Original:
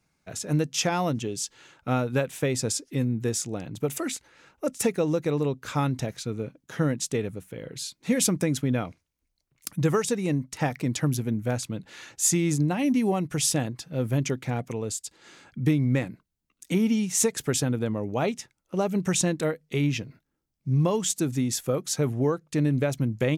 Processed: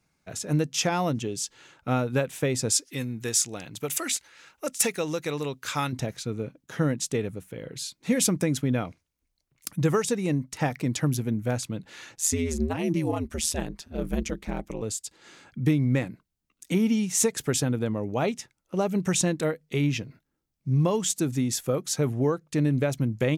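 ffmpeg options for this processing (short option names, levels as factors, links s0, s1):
-filter_complex "[0:a]asettb=1/sr,asplit=3[s0][s1][s2];[s0]atrim=end=2.724[s3];[s1]atrim=start=2.72:end=5.93,asetpts=PTS-STARTPTS,afade=t=in:d=0.004:c=qsin,afade=t=out:st=3.206:d=0.004:c=qsin,tiltshelf=f=970:g=-7[s4];[s2]atrim=start=5.926[s5];[s3][s4]acrossfade=d=0.004:c1=hsin:c2=qsin[s6];[s6][s5]acrossfade=d=0.004:c1=qsin:c2=hsin,asettb=1/sr,asplit=3[s7][s8][s9];[s7]atrim=end=12.154[s10];[s8]atrim=start=12.15:end=14.82,asetpts=PTS-STARTPTS,afade=t=in:d=0.004:c=qsin,afade=t=out:st=2.666:d=0.004:c=qsin,aeval=exprs='val(0)*sin(2*PI*80*n/s)':c=same[s11];[s9]atrim=start=14.816[s12];[s10][s11]acrossfade=d=0.004:c1=hsin:c2=qsin[s13];[s13][s12]acrossfade=d=0.004:c1=qsin:c2=hsin"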